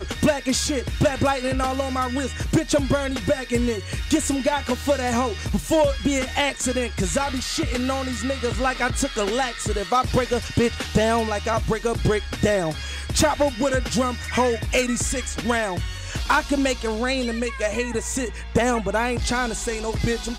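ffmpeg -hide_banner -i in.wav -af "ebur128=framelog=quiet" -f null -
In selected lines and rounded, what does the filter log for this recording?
Integrated loudness:
  I:         -23.0 LUFS
  Threshold: -33.0 LUFS
Loudness range:
  LRA:         1.5 LU
  Threshold: -43.0 LUFS
  LRA low:   -23.9 LUFS
  LRA high:  -22.4 LUFS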